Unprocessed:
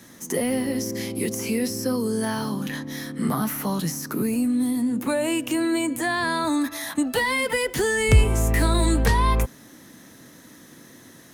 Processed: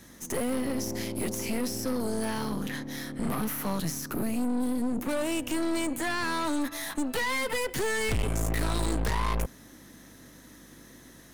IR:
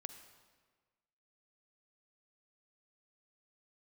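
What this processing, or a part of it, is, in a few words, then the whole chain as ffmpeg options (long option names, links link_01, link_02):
valve amplifier with mains hum: -af "aeval=exprs='(tanh(20*val(0)+0.7)-tanh(0.7))/20':channel_layout=same,aeval=exprs='val(0)+0.001*(sin(2*PI*50*n/s)+sin(2*PI*2*50*n/s)/2+sin(2*PI*3*50*n/s)/3+sin(2*PI*4*50*n/s)/4+sin(2*PI*5*50*n/s)/5)':channel_layout=same"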